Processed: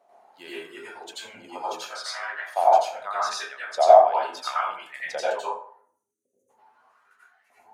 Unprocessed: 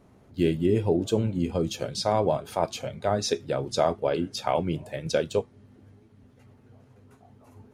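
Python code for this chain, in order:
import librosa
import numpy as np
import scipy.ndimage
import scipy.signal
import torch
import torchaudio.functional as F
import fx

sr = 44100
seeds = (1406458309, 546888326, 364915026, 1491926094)

y = fx.tube_stage(x, sr, drive_db=25.0, bias=0.35, at=(2.05, 2.53))
y = fx.spec_erase(y, sr, start_s=5.71, length_s=0.79, low_hz=580.0, high_hz=5800.0)
y = fx.dereverb_blind(y, sr, rt60_s=0.74)
y = fx.filter_lfo_highpass(y, sr, shape='saw_up', hz=0.8, low_hz=670.0, high_hz=2100.0, q=5.9)
y = fx.rev_plate(y, sr, seeds[0], rt60_s=0.56, hf_ratio=0.55, predelay_ms=75, drr_db=-8.5)
y = y * librosa.db_to_amplitude(-8.5)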